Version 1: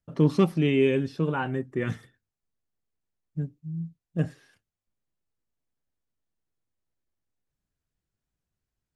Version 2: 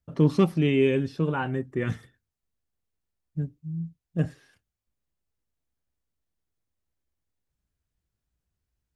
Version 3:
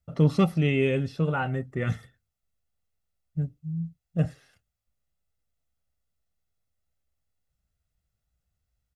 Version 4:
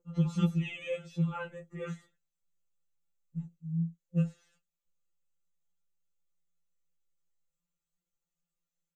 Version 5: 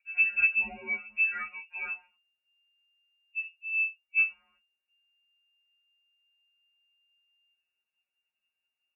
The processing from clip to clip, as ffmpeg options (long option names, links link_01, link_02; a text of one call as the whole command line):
ffmpeg -i in.wav -af "equalizer=frequency=61:width=1.5:gain=9.5" out.wav
ffmpeg -i in.wav -af "aecho=1:1:1.5:0.51" out.wav
ffmpeg -i in.wav -af "aeval=exprs='val(0)+0.00224*sin(2*PI*460*n/s)':channel_layout=same,superequalizer=8b=0.316:11b=0.631:14b=0.631:15b=2:16b=0.398,afftfilt=real='re*2.83*eq(mod(b,8),0)':imag='im*2.83*eq(mod(b,8),0)':win_size=2048:overlap=0.75,volume=-5dB" out.wav
ffmpeg -i in.wav -af "lowpass=frequency=2400:width_type=q:width=0.5098,lowpass=frequency=2400:width_type=q:width=0.6013,lowpass=frequency=2400:width_type=q:width=0.9,lowpass=frequency=2400:width_type=q:width=2.563,afreqshift=-2800,volume=2.5dB" out.wav